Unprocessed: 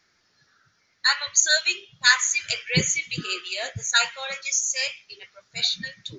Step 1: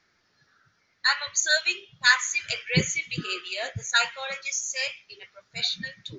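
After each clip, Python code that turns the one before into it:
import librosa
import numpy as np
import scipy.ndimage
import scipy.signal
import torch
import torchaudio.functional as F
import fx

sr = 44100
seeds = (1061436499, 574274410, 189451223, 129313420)

y = fx.high_shelf(x, sr, hz=5800.0, db=-11.0)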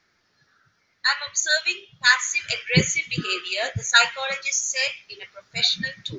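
y = fx.rider(x, sr, range_db=5, speed_s=2.0)
y = F.gain(torch.from_numpy(y), 3.5).numpy()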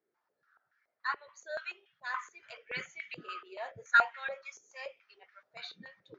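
y = fx.filter_held_bandpass(x, sr, hz=7.0, low_hz=420.0, high_hz=1700.0)
y = F.gain(torch.from_numpy(y), -3.0).numpy()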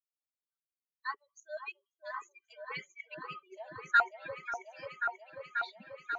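y = fx.bin_expand(x, sr, power=2.0)
y = fx.echo_opening(y, sr, ms=538, hz=750, octaves=1, feedback_pct=70, wet_db=-3)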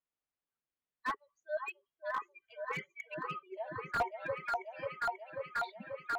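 y = fx.air_absorb(x, sr, metres=410.0)
y = fx.slew_limit(y, sr, full_power_hz=18.0)
y = F.gain(torch.from_numpy(y), 6.5).numpy()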